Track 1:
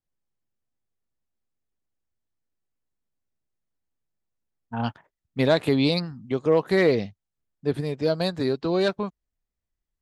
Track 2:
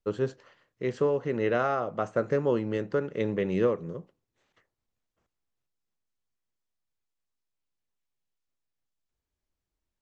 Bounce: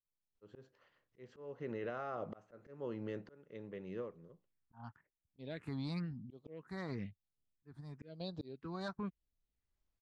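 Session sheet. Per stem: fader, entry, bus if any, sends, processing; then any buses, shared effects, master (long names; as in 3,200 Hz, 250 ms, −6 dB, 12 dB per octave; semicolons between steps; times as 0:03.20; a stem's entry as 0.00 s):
−14.0 dB, 0.00 s, no send, automatic gain control gain up to 11 dB; all-pass phaser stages 4, 0.99 Hz, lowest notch 430–1,900 Hz
−4.0 dB, 0.35 s, no send, automatic ducking −23 dB, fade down 1.70 s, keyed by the first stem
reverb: not used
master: low-pass filter 5,500 Hz 12 dB per octave; volume swells 797 ms; brickwall limiter −32.5 dBFS, peak gain reduction 11.5 dB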